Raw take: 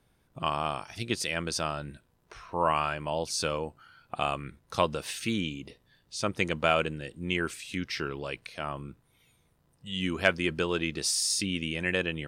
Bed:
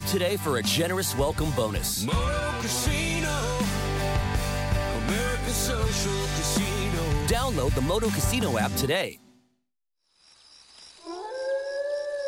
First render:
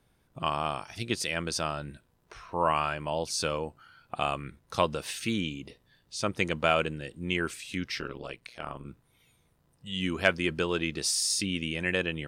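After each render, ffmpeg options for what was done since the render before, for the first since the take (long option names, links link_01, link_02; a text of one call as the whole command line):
ffmpeg -i in.wav -filter_complex "[0:a]asplit=3[link_01][link_02][link_03];[link_01]afade=type=out:start_time=7.98:duration=0.02[link_04];[link_02]tremolo=f=120:d=0.889,afade=type=in:start_time=7.98:duration=0.02,afade=type=out:start_time=8.85:duration=0.02[link_05];[link_03]afade=type=in:start_time=8.85:duration=0.02[link_06];[link_04][link_05][link_06]amix=inputs=3:normalize=0" out.wav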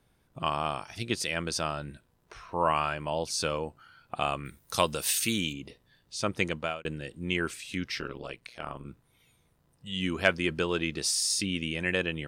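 ffmpeg -i in.wav -filter_complex "[0:a]asettb=1/sr,asplit=3[link_01][link_02][link_03];[link_01]atrim=end=4.454[link_04];[link_02]atrim=start=4.45:end=5.53,asetpts=PTS-STARTPTS,afade=type=in:duration=0.004:curve=qsin,afade=type=out:start_time=1.076:duration=0.004:curve=qsin,aemphasis=mode=production:type=75fm[link_05];[link_03]atrim=start=5.526[link_06];[link_04][link_05]acrossfade=duration=0.004:curve1=hsin:curve2=qsin[link_07];[link_07][link_06]acrossfade=duration=0.004:curve1=qsin:curve2=hsin,asplit=2[link_08][link_09];[link_08]atrim=end=6.85,asetpts=PTS-STARTPTS,afade=type=out:start_time=6.44:duration=0.41[link_10];[link_09]atrim=start=6.85,asetpts=PTS-STARTPTS,afade=type=in:duration=0.004:curve=hsin[link_11];[link_10][link_11]concat=n=2:v=0:a=1" out.wav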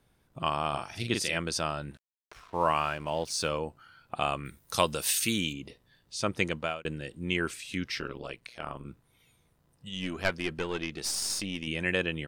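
ffmpeg -i in.wav -filter_complex "[0:a]asplit=3[link_01][link_02][link_03];[link_01]afade=type=out:start_time=0.72:duration=0.02[link_04];[link_02]asplit=2[link_05][link_06];[link_06]adelay=42,volume=-4.5dB[link_07];[link_05][link_07]amix=inputs=2:normalize=0,afade=type=in:start_time=0.72:duration=0.02,afade=type=out:start_time=1.37:duration=0.02[link_08];[link_03]afade=type=in:start_time=1.37:duration=0.02[link_09];[link_04][link_08][link_09]amix=inputs=3:normalize=0,asettb=1/sr,asplit=3[link_10][link_11][link_12];[link_10]atrim=end=1.914[link_13];[link_11]atrim=start=1.91:end=3.49,asetpts=PTS-STARTPTS,afade=type=in:duration=0.004:curve=qsin,afade=type=out:start_time=1.576:duration=0.004:curve=qsin,aeval=exprs='sgn(val(0))*max(abs(val(0))-0.00266,0)':channel_layout=same[link_14];[link_12]atrim=start=3.486[link_15];[link_13][link_14]acrossfade=duration=0.004:curve1=hsin:curve2=qsin[link_16];[link_16][link_15]acrossfade=duration=0.004:curve1=qsin:curve2=hsin,asettb=1/sr,asplit=3[link_17][link_18][link_19];[link_17]atrim=end=9.894[link_20];[link_18]atrim=start=9.89:end=11.67,asetpts=PTS-STARTPTS,afade=type=in:duration=0.004:curve=qsin,afade=type=out:start_time=1.776:duration=0.004:curve=qsin,aeval=exprs='(tanh(7.94*val(0)+0.7)-tanh(0.7))/7.94':channel_layout=same[link_21];[link_19]atrim=start=11.666[link_22];[link_20][link_21]acrossfade=duration=0.004:curve1=hsin:curve2=qsin[link_23];[link_23][link_22]acrossfade=duration=0.004:curve1=qsin:curve2=hsin" out.wav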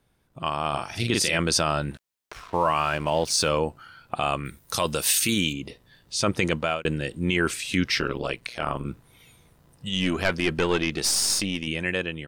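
ffmpeg -i in.wav -af "dynaudnorm=framelen=160:gausssize=11:maxgain=11.5dB,alimiter=limit=-11.5dB:level=0:latency=1:release=13" out.wav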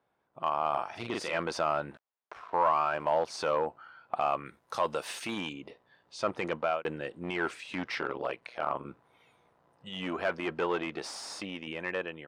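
ffmpeg -i in.wav -af "asoftclip=type=hard:threshold=-17.5dB,bandpass=frequency=840:width_type=q:width=1.1:csg=0" out.wav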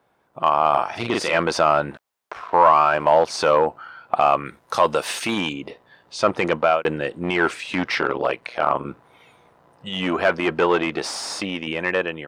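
ffmpeg -i in.wav -af "volume=12dB" out.wav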